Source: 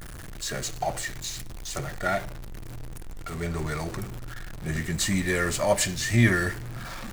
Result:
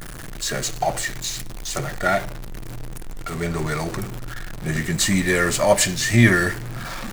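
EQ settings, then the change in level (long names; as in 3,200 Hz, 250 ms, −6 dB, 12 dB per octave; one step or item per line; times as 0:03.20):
parametric band 67 Hz −14.5 dB 0.52 octaves
+6.5 dB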